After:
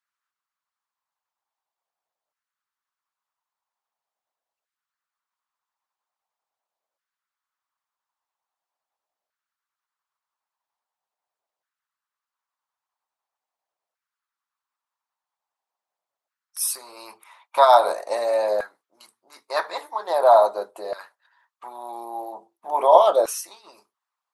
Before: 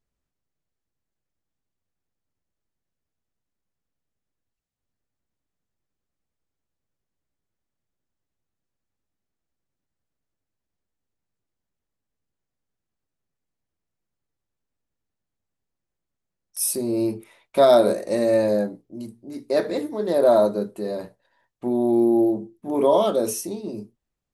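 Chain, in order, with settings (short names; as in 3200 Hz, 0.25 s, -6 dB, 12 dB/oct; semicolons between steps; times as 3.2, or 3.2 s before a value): graphic EQ 125/250/1000/4000 Hz +7/-4/+9/+3 dB; harmonic-percussive split percussive +9 dB; LFO high-pass saw down 0.43 Hz 600–1500 Hz; gain -8.5 dB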